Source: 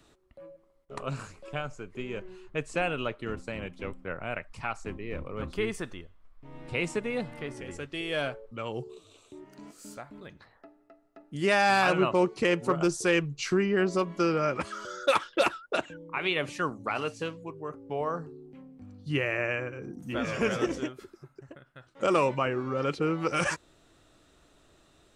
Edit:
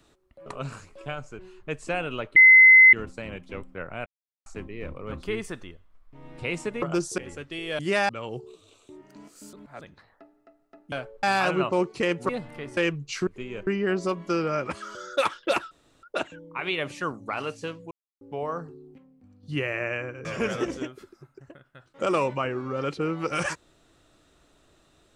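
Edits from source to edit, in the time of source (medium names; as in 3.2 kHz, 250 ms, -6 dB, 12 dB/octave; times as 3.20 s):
0.46–0.93 s: delete
1.86–2.26 s: move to 13.57 s
3.23 s: add tone 2.05 kHz -9 dBFS 0.57 s
4.36–4.76 s: mute
7.12–7.60 s: swap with 12.71–13.07 s
8.21–8.52 s: swap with 11.35–11.65 s
9.96–10.24 s: reverse
15.61 s: insert room tone 0.32 s
17.49–17.79 s: mute
18.56–19.01 s: gain -7.5 dB
19.83–20.26 s: delete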